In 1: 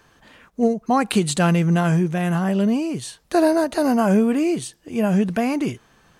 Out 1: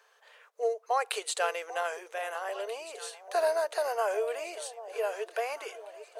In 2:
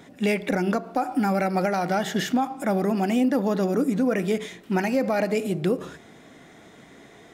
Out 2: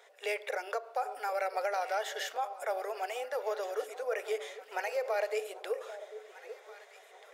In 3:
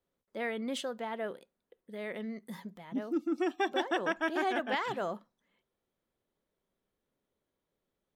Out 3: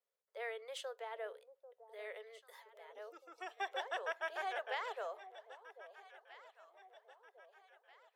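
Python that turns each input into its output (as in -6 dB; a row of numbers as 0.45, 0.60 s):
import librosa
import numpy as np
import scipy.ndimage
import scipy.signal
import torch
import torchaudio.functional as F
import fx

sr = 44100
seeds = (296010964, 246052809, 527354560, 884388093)

y = scipy.signal.sosfilt(scipy.signal.cheby1(6, 1.0, 430.0, 'highpass', fs=sr, output='sos'), x)
y = fx.echo_alternate(y, sr, ms=792, hz=850.0, feedback_pct=67, wet_db=-13)
y = F.gain(torch.from_numpy(y), -7.0).numpy()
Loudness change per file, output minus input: -12.5, -11.0, -10.0 LU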